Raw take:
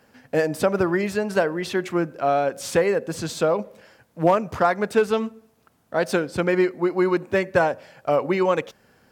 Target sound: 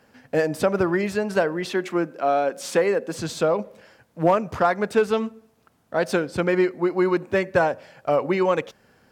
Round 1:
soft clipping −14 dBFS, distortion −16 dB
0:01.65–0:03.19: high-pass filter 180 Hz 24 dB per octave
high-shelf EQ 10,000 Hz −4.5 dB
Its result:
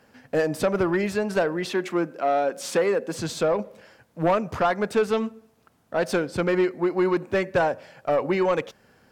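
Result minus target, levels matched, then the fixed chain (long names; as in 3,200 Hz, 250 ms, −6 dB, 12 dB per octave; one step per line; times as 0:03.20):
soft clipping: distortion +15 dB
soft clipping −4 dBFS, distortion −31 dB
0:01.65–0:03.19: high-pass filter 180 Hz 24 dB per octave
high-shelf EQ 10,000 Hz −4.5 dB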